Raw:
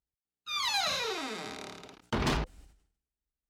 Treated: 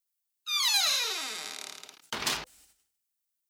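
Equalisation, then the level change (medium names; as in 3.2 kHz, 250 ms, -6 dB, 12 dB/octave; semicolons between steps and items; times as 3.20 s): tilt EQ +4.5 dB/octave; -3.0 dB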